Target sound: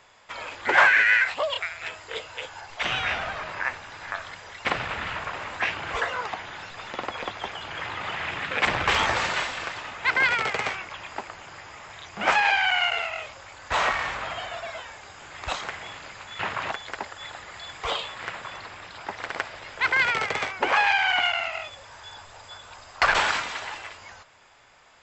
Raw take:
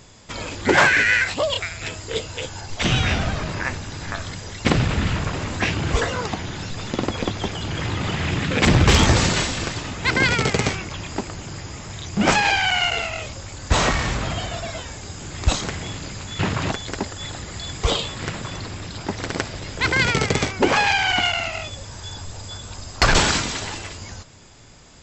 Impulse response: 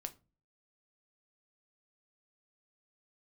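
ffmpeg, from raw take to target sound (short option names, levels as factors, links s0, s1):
-filter_complex "[0:a]acrossover=split=600 3000:gain=0.0891 1 0.178[s0][s1][s2];[s0][s1][s2]amix=inputs=3:normalize=0"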